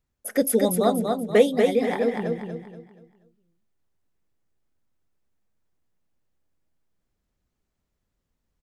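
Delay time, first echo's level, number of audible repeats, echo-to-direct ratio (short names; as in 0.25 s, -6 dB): 0.239 s, -4.0 dB, 4, -3.5 dB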